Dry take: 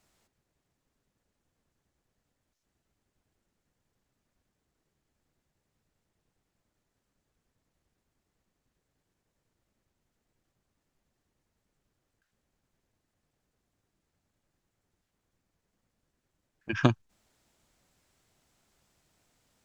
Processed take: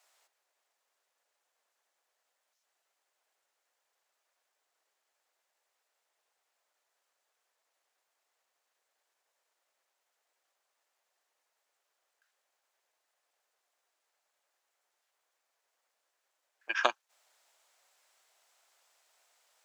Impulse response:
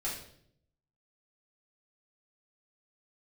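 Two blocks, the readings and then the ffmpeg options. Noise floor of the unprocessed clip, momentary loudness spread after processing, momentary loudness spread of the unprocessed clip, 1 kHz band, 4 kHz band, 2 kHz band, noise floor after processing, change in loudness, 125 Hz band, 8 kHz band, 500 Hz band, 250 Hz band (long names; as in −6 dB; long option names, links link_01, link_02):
−82 dBFS, 12 LU, 12 LU, +3.0 dB, +3.0 dB, +3.0 dB, −83 dBFS, −4.0 dB, below −40 dB, can't be measured, −3.0 dB, −21.5 dB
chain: -af "highpass=frequency=590:width=0.5412,highpass=frequency=590:width=1.3066,volume=3dB"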